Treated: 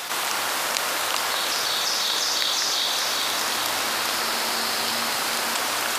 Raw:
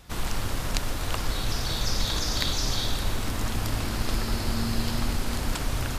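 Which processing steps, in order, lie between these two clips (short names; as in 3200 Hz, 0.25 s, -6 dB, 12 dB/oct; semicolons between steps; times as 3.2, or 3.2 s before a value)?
HPF 680 Hz 12 dB/oct; echo with dull and thin repeats by turns 0.198 s, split 2100 Hz, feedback 77%, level -4.5 dB; fast leveller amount 70%; gain +3 dB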